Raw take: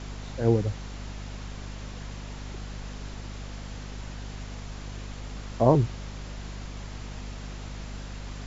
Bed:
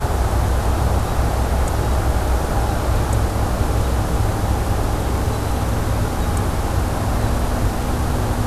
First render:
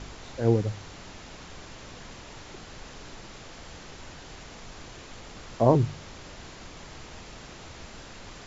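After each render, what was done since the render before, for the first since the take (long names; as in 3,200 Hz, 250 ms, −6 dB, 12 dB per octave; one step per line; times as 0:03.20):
hum removal 50 Hz, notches 5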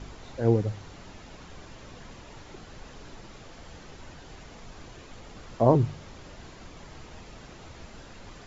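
broadband denoise 6 dB, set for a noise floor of −46 dBFS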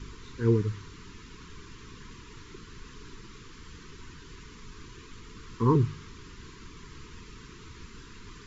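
elliptic band-stop filter 440–990 Hz, stop band 50 dB
dynamic equaliser 1,200 Hz, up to +3 dB, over −48 dBFS, Q 0.78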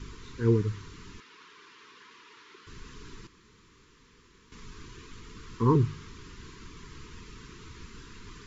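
0:01.20–0:02.67: band-pass filter 550–4,500 Hz
0:03.27–0:04.52: fill with room tone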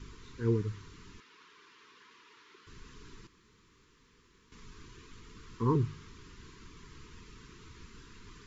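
level −5.5 dB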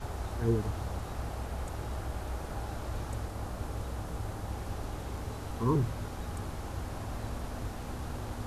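mix in bed −18.5 dB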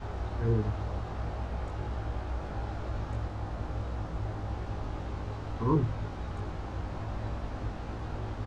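high-frequency loss of the air 150 metres
double-tracking delay 19 ms −4 dB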